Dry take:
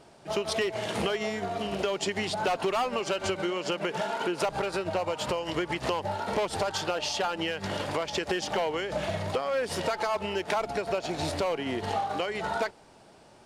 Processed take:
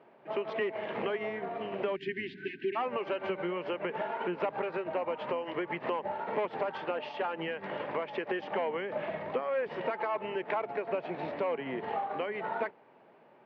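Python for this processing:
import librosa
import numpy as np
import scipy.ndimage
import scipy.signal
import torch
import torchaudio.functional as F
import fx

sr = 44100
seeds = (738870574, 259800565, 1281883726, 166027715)

y = fx.octave_divider(x, sr, octaves=1, level_db=-4.0)
y = fx.spec_erase(y, sr, start_s=1.96, length_s=0.8, low_hz=420.0, high_hz=1500.0)
y = fx.cabinet(y, sr, low_hz=190.0, low_slope=24, high_hz=2300.0, hz=(200.0, 300.0, 720.0, 1400.0), db=(-6, -6, -4, -5))
y = F.gain(torch.from_numpy(y), -1.5).numpy()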